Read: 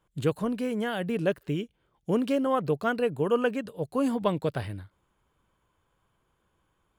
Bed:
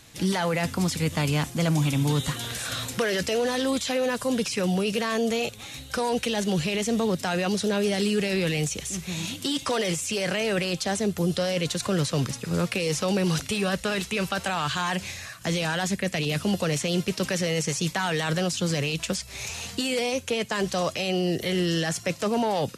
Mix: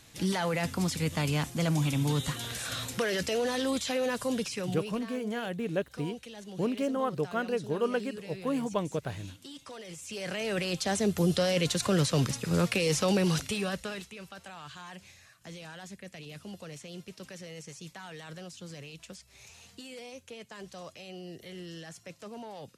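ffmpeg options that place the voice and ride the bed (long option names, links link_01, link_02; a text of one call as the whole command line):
ffmpeg -i stem1.wav -i stem2.wav -filter_complex "[0:a]adelay=4500,volume=-4.5dB[link_01];[1:a]volume=13.5dB,afade=type=out:start_time=4.24:duration=0.8:silence=0.188365,afade=type=in:start_time=9.88:duration=1.29:silence=0.125893,afade=type=out:start_time=13.08:duration=1.07:silence=0.133352[link_02];[link_01][link_02]amix=inputs=2:normalize=0" out.wav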